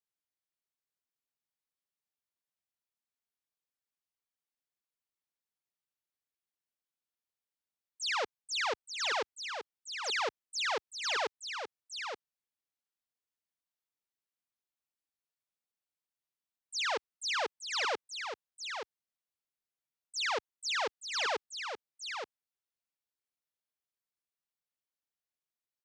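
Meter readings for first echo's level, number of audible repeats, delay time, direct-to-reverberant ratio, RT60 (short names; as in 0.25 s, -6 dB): -7.0 dB, 1, 0.876 s, none, none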